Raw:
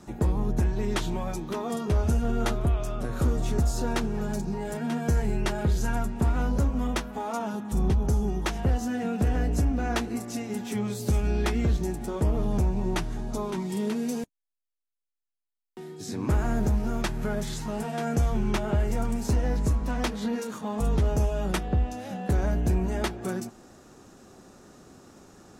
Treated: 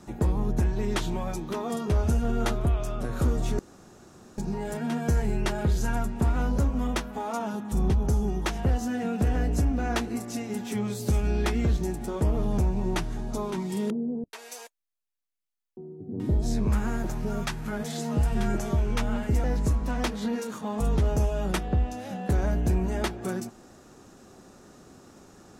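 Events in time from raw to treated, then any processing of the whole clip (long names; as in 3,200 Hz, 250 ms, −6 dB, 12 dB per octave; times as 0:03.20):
0:03.59–0:04.38: fill with room tone
0:13.90–0:19.44: multiband delay without the direct sound lows, highs 430 ms, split 620 Hz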